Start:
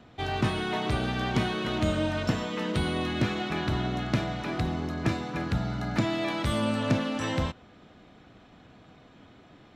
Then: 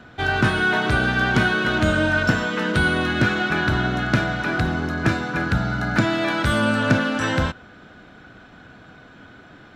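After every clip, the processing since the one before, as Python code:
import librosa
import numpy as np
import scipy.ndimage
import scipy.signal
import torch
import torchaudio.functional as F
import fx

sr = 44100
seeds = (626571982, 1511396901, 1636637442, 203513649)

y = fx.peak_eq(x, sr, hz=1500.0, db=14.5, octaves=0.24)
y = y * librosa.db_to_amplitude(6.5)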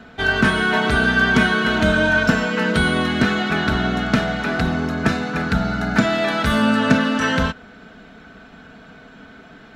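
y = x + 0.62 * np.pad(x, (int(4.5 * sr / 1000.0), 0))[:len(x)]
y = y * librosa.db_to_amplitude(1.5)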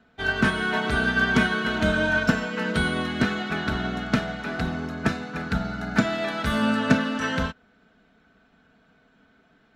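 y = fx.upward_expand(x, sr, threshold_db=-39.0, expansion=1.5)
y = y * librosa.db_to_amplitude(-3.0)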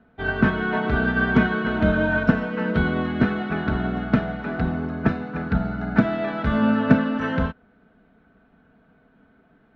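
y = fx.spacing_loss(x, sr, db_at_10k=40)
y = y * librosa.db_to_amplitude(5.0)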